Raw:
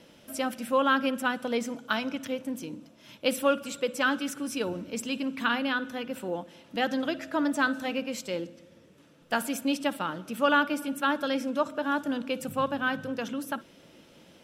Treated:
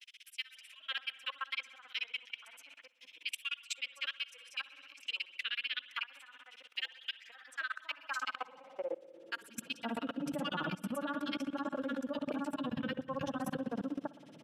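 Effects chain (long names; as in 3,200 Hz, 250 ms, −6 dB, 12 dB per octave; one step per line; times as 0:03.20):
low-pass filter 12,000 Hz 12 dB per octave
high-shelf EQ 2,900 Hz −2 dB
notch filter 1,500 Hz, Q 27
granular cloud 57 ms, grains 16 per second, spray 19 ms, pitch spread up and down by 0 semitones
in parallel at 0 dB: downward compressor 6 to 1, threshold −44 dBFS, peak gain reduction 21 dB
on the sum: spring reverb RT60 1.3 s, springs 58 ms, chirp 80 ms, DRR 8.5 dB
high-pass filter sweep 2,400 Hz → 150 Hz, 0:07.21–0:09.65
three-band delay without the direct sound highs, lows, mids 180/520 ms, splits 150/1,500 Hz
output level in coarse steps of 19 dB
level +2 dB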